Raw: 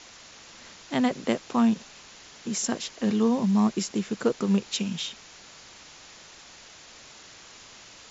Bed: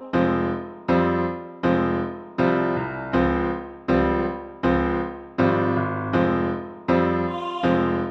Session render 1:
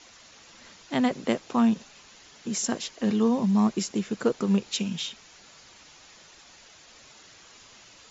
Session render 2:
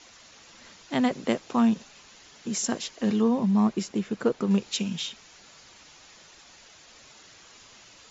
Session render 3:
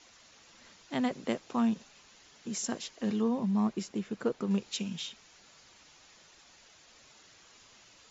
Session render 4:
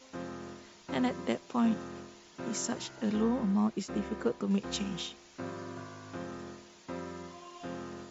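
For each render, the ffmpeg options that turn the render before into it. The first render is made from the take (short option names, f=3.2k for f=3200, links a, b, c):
-af "afftdn=nr=6:nf=-49"
-filter_complex "[0:a]asettb=1/sr,asplit=3[a][b][c];[a]atrim=end=3.214[d];[b]atrim=start=3.21:end=4.51,asetpts=PTS-STARTPTS,afade=t=in:d=0.004:c=qsin,afade=t=out:st=1.296:d=0.004:c=qsin,highshelf=f=4.9k:g=-9.5[e];[c]atrim=start=4.506[f];[d][e]acrossfade=d=0.004:c1=hsin:c2=qsin[g];[g][f]acrossfade=d=0.004:c1=qsin:c2=hsin"
-af "volume=-6.5dB"
-filter_complex "[1:a]volume=-21dB[a];[0:a][a]amix=inputs=2:normalize=0"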